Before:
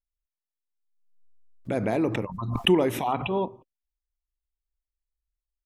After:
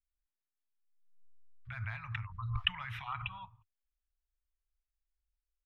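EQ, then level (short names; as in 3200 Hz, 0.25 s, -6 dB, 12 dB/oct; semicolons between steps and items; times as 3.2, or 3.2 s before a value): elliptic band-stop 100–1300 Hz, stop band 70 dB; air absorption 370 m; 0.0 dB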